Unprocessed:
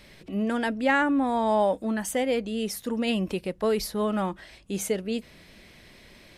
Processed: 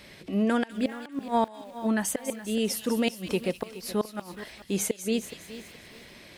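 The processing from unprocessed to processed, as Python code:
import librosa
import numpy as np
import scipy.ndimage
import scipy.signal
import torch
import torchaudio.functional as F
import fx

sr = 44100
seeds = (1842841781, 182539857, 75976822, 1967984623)

y = fx.highpass(x, sr, hz=100.0, slope=6)
y = fx.gate_flip(y, sr, shuts_db=-18.0, range_db=-26)
y = fx.echo_wet_highpass(y, sr, ms=199, feedback_pct=51, hz=2400.0, wet_db=-10.0)
y = fx.echo_crushed(y, sr, ms=423, feedback_pct=35, bits=8, wet_db=-14.5)
y = y * 10.0 ** (3.0 / 20.0)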